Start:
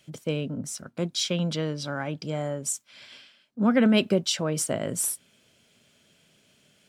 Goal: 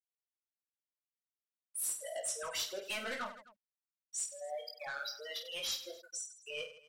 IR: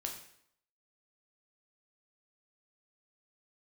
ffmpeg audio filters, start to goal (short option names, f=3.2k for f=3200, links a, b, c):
-filter_complex "[0:a]areverse,highpass=1k,afftfilt=real='re*gte(hypot(re,im),0.0398)':imag='im*gte(hypot(re,im),0.0398)':win_size=1024:overlap=0.75,asplit=2[a][b];[b]acompressor=threshold=-44dB:ratio=8,volume=0dB[c];[a][c]amix=inputs=2:normalize=0,acrusher=bits=10:mix=0:aa=0.000001,asoftclip=type=tanh:threshold=-32dB,asplit=2[d][e];[e]aecho=0:1:20|50|95|162.5|263.8:0.631|0.398|0.251|0.158|0.1[f];[d][f]amix=inputs=2:normalize=0,volume=-3.5dB" -ar 44100 -c:a libmp3lame -b:a 64k